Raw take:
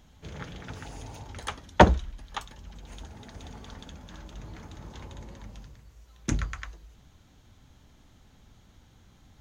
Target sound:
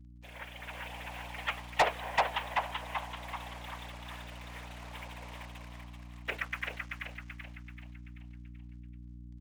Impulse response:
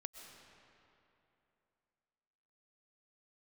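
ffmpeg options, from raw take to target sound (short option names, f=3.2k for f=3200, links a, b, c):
-filter_complex "[0:a]asplit=2[a][b];[1:a]atrim=start_sample=2205,asetrate=26019,aresample=44100[c];[b][c]afir=irnorm=-1:irlink=0,volume=-12.5dB[d];[a][d]amix=inputs=2:normalize=0,crystalizer=i=7.5:c=0,asplit=2[e][f];[f]acontrast=83,volume=0dB[g];[e][g]amix=inputs=2:normalize=0,afftfilt=real='hypot(re,im)*cos(2*PI*random(0))':imag='hypot(re,im)*sin(2*PI*random(1))':win_size=512:overlap=0.75,equalizer=f=1.3k:t=o:w=1.1:g=-8,highpass=f=550:t=q:w=0.5412,highpass=f=550:t=q:w=1.307,lowpass=f=2.6k:t=q:w=0.5176,lowpass=f=2.6k:t=q:w=0.7071,lowpass=f=2.6k:t=q:w=1.932,afreqshift=53,acrusher=bits=7:mix=0:aa=0.5,asplit=7[h][i][j][k][l][m][n];[i]adelay=384,afreqshift=54,volume=-4.5dB[o];[j]adelay=768,afreqshift=108,volume=-11.1dB[p];[k]adelay=1152,afreqshift=162,volume=-17.6dB[q];[l]adelay=1536,afreqshift=216,volume=-24.2dB[r];[m]adelay=1920,afreqshift=270,volume=-30.7dB[s];[n]adelay=2304,afreqshift=324,volume=-37.3dB[t];[h][o][p][q][r][s][t]amix=inputs=7:normalize=0,aeval=exprs='val(0)+0.00708*(sin(2*PI*60*n/s)+sin(2*PI*2*60*n/s)/2+sin(2*PI*3*60*n/s)/3+sin(2*PI*4*60*n/s)/4+sin(2*PI*5*60*n/s)/5)':c=same,asoftclip=type=tanh:threshold=-16.5dB,dynaudnorm=f=280:g=5:m=5dB,volume=-8dB"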